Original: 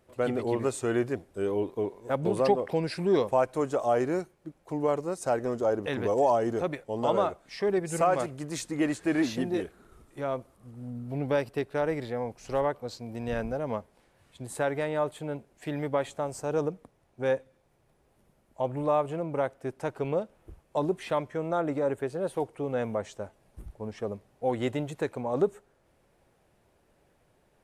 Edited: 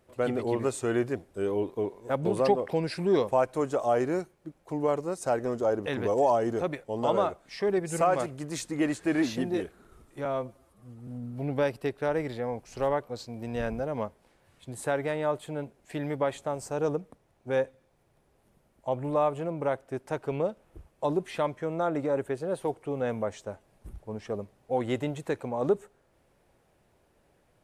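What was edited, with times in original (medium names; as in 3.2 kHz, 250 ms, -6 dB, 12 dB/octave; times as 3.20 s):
10.25–10.80 s: stretch 1.5×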